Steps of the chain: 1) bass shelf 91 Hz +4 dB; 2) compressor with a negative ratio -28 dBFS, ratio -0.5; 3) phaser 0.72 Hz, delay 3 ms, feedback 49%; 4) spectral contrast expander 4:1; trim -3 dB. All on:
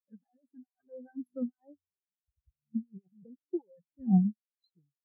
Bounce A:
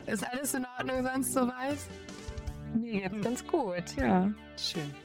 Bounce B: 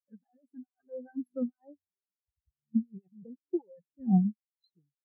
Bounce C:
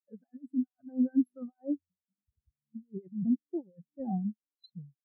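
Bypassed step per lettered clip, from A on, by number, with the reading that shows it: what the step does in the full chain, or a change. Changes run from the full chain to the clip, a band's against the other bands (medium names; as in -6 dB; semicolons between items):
4, 1 kHz band +16.0 dB; 1, 125 Hz band -3.0 dB; 3, 125 Hz band -9.0 dB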